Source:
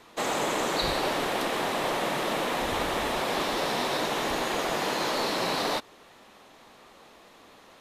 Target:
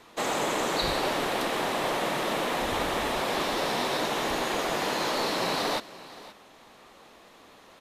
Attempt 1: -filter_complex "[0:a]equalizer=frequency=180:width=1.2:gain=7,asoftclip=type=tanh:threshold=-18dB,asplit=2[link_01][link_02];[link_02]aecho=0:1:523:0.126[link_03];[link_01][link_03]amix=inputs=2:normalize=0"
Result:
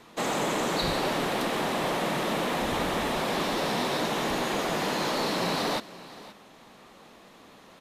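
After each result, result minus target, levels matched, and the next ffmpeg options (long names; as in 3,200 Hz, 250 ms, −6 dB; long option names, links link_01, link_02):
soft clipping: distortion +22 dB; 250 Hz band +3.0 dB
-filter_complex "[0:a]equalizer=frequency=180:width=1.2:gain=7,asoftclip=type=tanh:threshold=-7dB,asplit=2[link_01][link_02];[link_02]aecho=0:1:523:0.126[link_03];[link_01][link_03]amix=inputs=2:normalize=0"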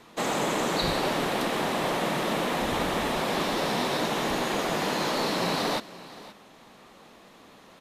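250 Hz band +3.0 dB
-filter_complex "[0:a]asoftclip=type=tanh:threshold=-7dB,asplit=2[link_01][link_02];[link_02]aecho=0:1:523:0.126[link_03];[link_01][link_03]amix=inputs=2:normalize=0"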